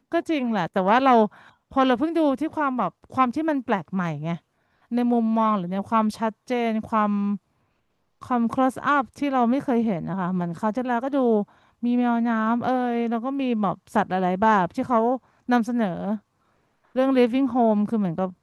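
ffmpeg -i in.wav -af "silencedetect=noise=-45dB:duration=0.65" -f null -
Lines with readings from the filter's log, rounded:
silence_start: 7.37
silence_end: 8.22 | silence_duration: 0.84
silence_start: 16.19
silence_end: 16.95 | silence_duration: 0.76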